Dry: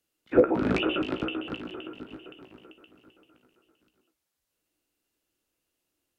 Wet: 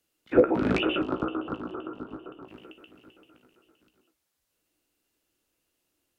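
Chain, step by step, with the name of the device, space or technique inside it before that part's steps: parallel compression (in parallel at -7 dB: compression, threshold -39 dBFS, peak gain reduction 23 dB); 1.02–2.48 s: on the sum: resonant high shelf 1.6 kHz -9 dB, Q 3

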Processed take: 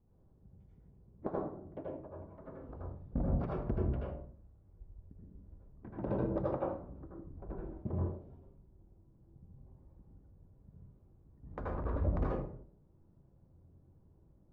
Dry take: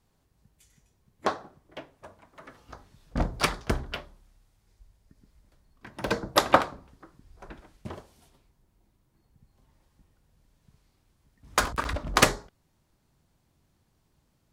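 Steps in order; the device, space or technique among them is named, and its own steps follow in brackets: television next door (compression 5:1, threshold -32 dBFS, peak gain reduction 18 dB; low-pass 480 Hz 12 dB/octave; reverberation RT60 0.50 s, pre-delay 75 ms, DRR -4.5 dB); trim +1 dB

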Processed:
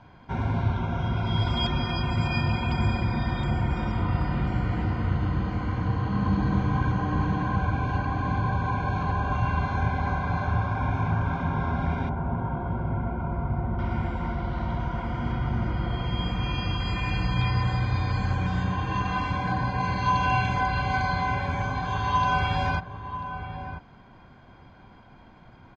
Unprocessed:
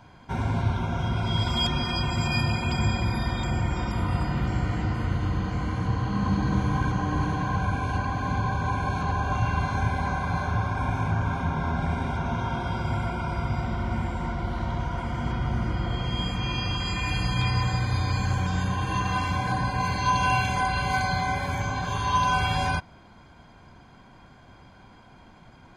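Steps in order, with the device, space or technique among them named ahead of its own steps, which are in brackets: shout across a valley (distance through air 160 m; echo from a far wall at 170 m, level -9 dB); 12.09–13.79 s: Bessel low-pass 1 kHz, order 2

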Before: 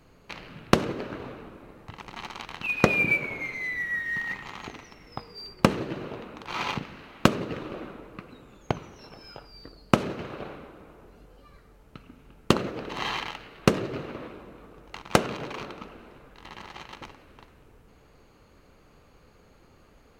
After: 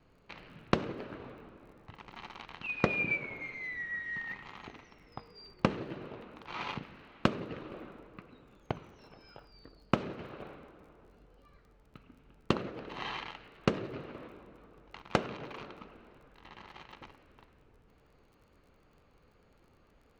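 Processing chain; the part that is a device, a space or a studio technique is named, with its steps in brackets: lo-fi chain (low-pass 4.4 kHz 12 dB/octave; wow and flutter 20 cents; crackle 35 per s -48 dBFS); trim -8 dB

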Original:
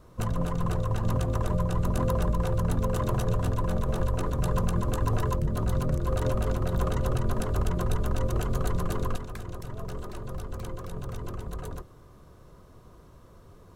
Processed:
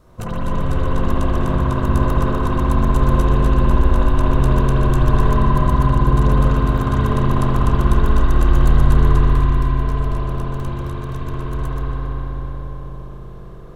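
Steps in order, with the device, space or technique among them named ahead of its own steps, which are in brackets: dub delay into a spring reverb (filtered feedback delay 278 ms, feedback 71%, low-pass 2.4 kHz, level -5 dB; spring tank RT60 3.8 s, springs 60 ms, chirp 25 ms, DRR -7.5 dB); trim +1.5 dB

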